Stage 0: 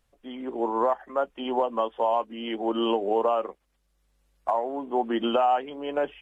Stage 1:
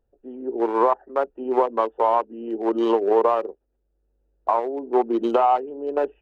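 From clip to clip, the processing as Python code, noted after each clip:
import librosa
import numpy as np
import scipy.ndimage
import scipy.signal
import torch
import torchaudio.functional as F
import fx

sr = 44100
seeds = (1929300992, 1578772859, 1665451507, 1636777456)

y = fx.wiener(x, sr, points=41)
y = fx.graphic_eq_15(y, sr, hz=(160, 400, 1000), db=(-7, 10, 9))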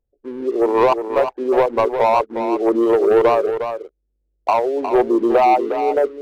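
y = fx.envelope_sharpen(x, sr, power=1.5)
y = fx.leveller(y, sr, passes=2)
y = y + 10.0 ** (-8.5 / 20.0) * np.pad(y, (int(359 * sr / 1000.0), 0))[:len(y)]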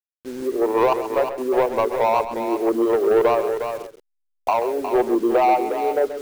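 y = fx.delta_hold(x, sr, step_db=-34.5)
y = fx.recorder_agc(y, sr, target_db=-15.5, rise_db_per_s=5.5, max_gain_db=30)
y = y + 10.0 ** (-11.5 / 20.0) * np.pad(y, (int(132 * sr / 1000.0), 0))[:len(y)]
y = F.gain(torch.from_numpy(y), -3.5).numpy()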